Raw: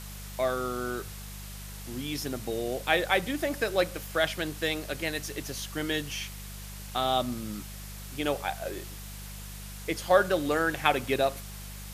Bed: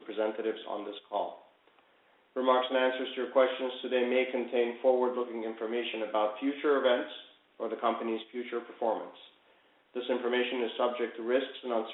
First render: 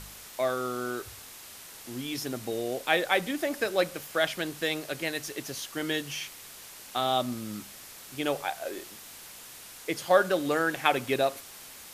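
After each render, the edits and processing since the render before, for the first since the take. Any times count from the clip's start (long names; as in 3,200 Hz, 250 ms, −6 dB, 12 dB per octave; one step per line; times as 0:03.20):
hum removal 50 Hz, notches 4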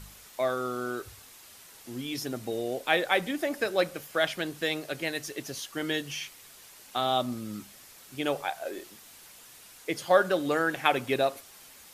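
broadband denoise 6 dB, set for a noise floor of −47 dBFS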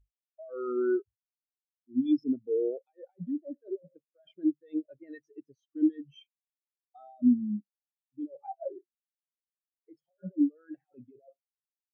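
compressor whose output falls as the input rises −33 dBFS, ratio −1
every bin expanded away from the loudest bin 4 to 1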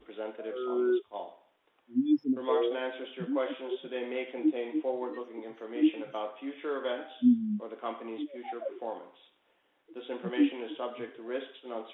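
mix in bed −7 dB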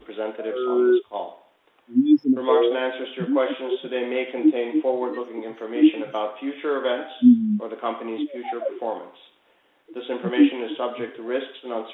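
level +9.5 dB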